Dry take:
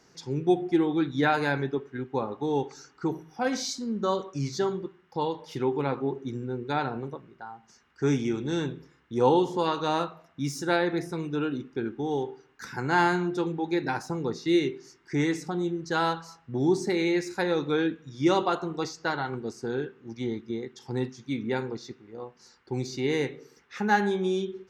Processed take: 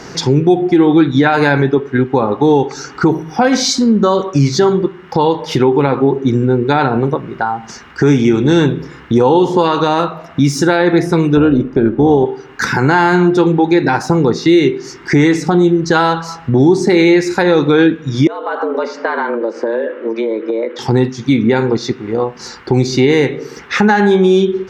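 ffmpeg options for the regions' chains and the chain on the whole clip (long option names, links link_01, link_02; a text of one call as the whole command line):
ffmpeg -i in.wav -filter_complex "[0:a]asettb=1/sr,asplit=3[link_01][link_02][link_03];[link_01]atrim=end=11.374[link_04];[link_02]atrim=start=11.37:end=12.26,asetpts=PTS-STARTPTS,afade=type=in:duration=0.004:curve=qsin,afade=type=out:start_time=0.886:duration=0.004:curve=qsin,tiltshelf=frequency=1300:gain=5,tremolo=f=220:d=0.333[link_05];[link_03]atrim=start=12.256[link_06];[link_04][link_05]acrossfade=duration=0.004:curve1=hsin:curve2=qsin[link_07];[link_07][link_06]acrossfade=duration=0.004:curve1=qsin:curve2=hsin,asettb=1/sr,asplit=3[link_08][link_09][link_10];[link_08]atrim=end=18.274[link_11];[link_09]atrim=start=18.27:end=20.79,asetpts=PTS-STARTPTS,afade=type=in:duration=0.004:curve=qsin,afade=type=out:start_time=2.516:duration=0.004:curve=qsin,acompressor=threshold=-38dB:ratio=6:attack=3.2:release=140:knee=1:detection=peak,afreqshift=110,highpass=270,lowpass=2300[link_12];[link_10]atrim=start=20.786[link_13];[link_11][link_12]acrossfade=duration=0.004:curve1=hsin:curve2=qsin[link_14];[link_14][link_13]acrossfade=duration=0.004:curve1=qsin:curve2=hsin,lowpass=frequency=4000:poles=1,acompressor=threshold=-45dB:ratio=2,alimiter=level_in=30dB:limit=-1dB:release=50:level=0:latency=1,volume=-1dB" out.wav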